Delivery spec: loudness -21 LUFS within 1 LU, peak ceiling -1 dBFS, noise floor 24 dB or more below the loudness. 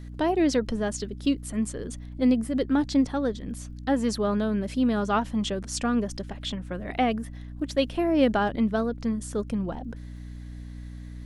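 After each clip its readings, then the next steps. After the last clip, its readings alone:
tick rate 32 per s; hum 60 Hz; highest harmonic 300 Hz; hum level -37 dBFS; loudness -27.0 LUFS; peak level -9.5 dBFS; loudness target -21.0 LUFS
-> de-click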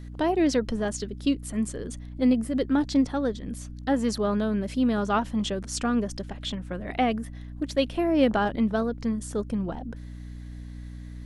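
tick rate 0 per s; hum 60 Hz; highest harmonic 300 Hz; hum level -37 dBFS
-> de-hum 60 Hz, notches 5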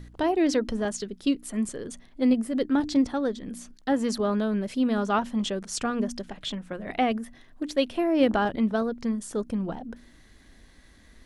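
hum not found; loudness -27.0 LUFS; peak level -10.0 dBFS; loudness target -21.0 LUFS
-> trim +6 dB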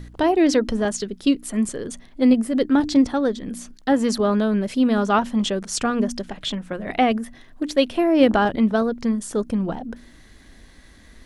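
loudness -21.0 LUFS; peak level -4.0 dBFS; noise floor -49 dBFS

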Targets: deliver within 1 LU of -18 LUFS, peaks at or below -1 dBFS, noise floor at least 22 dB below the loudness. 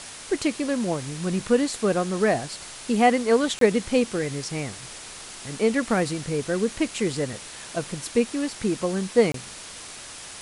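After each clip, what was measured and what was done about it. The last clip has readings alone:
dropouts 2; longest dropout 23 ms; noise floor -41 dBFS; noise floor target -47 dBFS; loudness -24.5 LUFS; peak level -6.0 dBFS; loudness target -18.0 LUFS
-> interpolate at 3.59/9.32 s, 23 ms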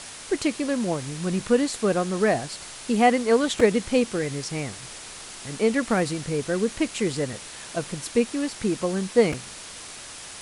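dropouts 0; noise floor -41 dBFS; noise floor target -47 dBFS
-> noise reduction 6 dB, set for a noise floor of -41 dBFS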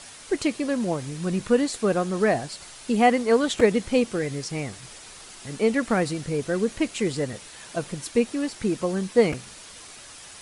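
noise floor -45 dBFS; noise floor target -47 dBFS
-> noise reduction 6 dB, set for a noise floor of -45 dBFS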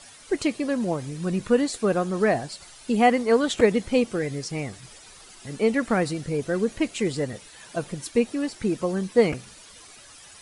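noise floor -48 dBFS; loudness -24.5 LUFS; peak level -6.0 dBFS; loudness target -18.0 LUFS
-> trim +6.5 dB; peak limiter -1 dBFS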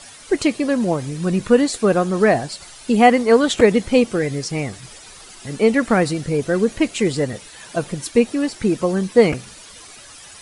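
loudness -18.5 LUFS; peak level -1.0 dBFS; noise floor -42 dBFS

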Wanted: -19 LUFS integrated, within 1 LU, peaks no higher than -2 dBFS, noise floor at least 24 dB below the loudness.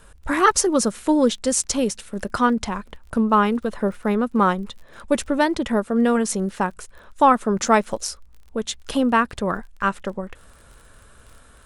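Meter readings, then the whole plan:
tick rate 28 per s; loudness -21.5 LUFS; peak level -3.0 dBFS; loudness target -19.0 LUFS
-> de-click; trim +2.5 dB; peak limiter -2 dBFS

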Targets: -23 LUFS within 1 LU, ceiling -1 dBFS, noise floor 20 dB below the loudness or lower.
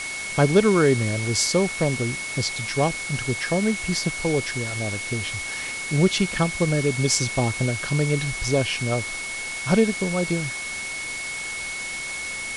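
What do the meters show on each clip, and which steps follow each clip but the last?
steady tone 2.2 kHz; tone level -30 dBFS; noise floor -31 dBFS; noise floor target -44 dBFS; loudness -23.5 LUFS; peak level -3.0 dBFS; loudness target -23.0 LUFS
-> band-stop 2.2 kHz, Q 30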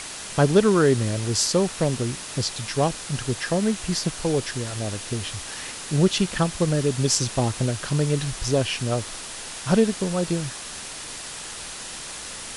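steady tone not found; noise floor -36 dBFS; noise floor target -45 dBFS
-> noise print and reduce 9 dB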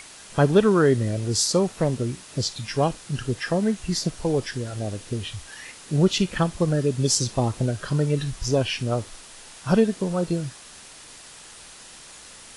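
noise floor -45 dBFS; loudness -24.0 LUFS; peak level -3.0 dBFS; loudness target -23.0 LUFS
-> trim +1 dB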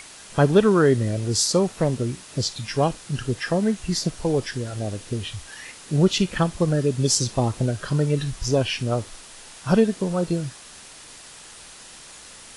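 loudness -23.0 LUFS; peak level -2.0 dBFS; noise floor -44 dBFS

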